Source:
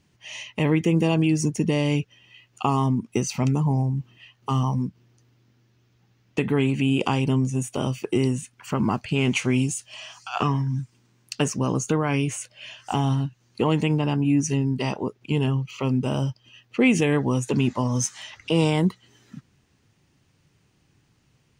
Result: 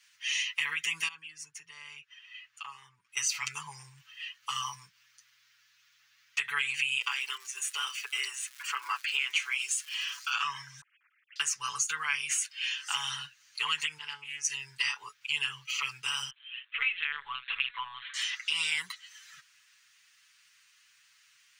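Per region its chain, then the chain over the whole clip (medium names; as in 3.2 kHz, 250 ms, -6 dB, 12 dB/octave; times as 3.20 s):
1.08–3.17 s: treble shelf 2.7 kHz -12 dB + compression 2:1, threshold -43 dBFS
6.99–10.30 s: steep high-pass 310 Hz + treble shelf 4.3 kHz -8 dB + crackle 210 per s -42 dBFS
10.81–11.36 s: formants replaced by sine waves + steep low-pass 2.7 kHz + slow attack 109 ms
13.98–14.45 s: feedback comb 430 Hz, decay 0.29 s, mix 70% + loudspeaker Doppler distortion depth 0.13 ms
16.30–18.14 s: block-companded coder 7-bit + high-pass 650 Hz 6 dB/octave + LPC vocoder at 8 kHz pitch kept
whole clip: inverse Chebyshev high-pass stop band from 690 Hz, stop band 40 dB; compression 6:1, threshold -35 dBFS; comb 7 ms, depth 96%; trim +5.5 dB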